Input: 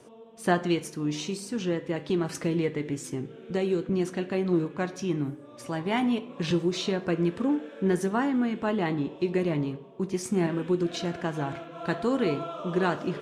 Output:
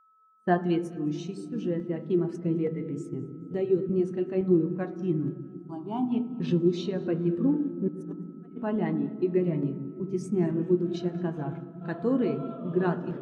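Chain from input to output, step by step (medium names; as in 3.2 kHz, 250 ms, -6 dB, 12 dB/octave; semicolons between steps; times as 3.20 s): 2.14–2.82 s: treble shelf 2.7 kHz -4.5 dB; gate -37 dBFS, range -21 dB; de-hum 48.44 Hz, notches 31; 7.88–8.58 s: compressor with a negative ratio -40 dBFS, ratio -0.5; whistle 1.3 kHz -49 dBFS; 5.48–6.12 s: static phaser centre 520 Hz, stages 6; thinning echo 214 ms, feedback 48%, level -17 dB; on a send at -11 dB: reverberation RT60 3.5 s, pre-delay 77 ms; on the sum: crackling interface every 0.87 s, samples 64, zero, from 0.93 s; spectral contrast expander 1.5:1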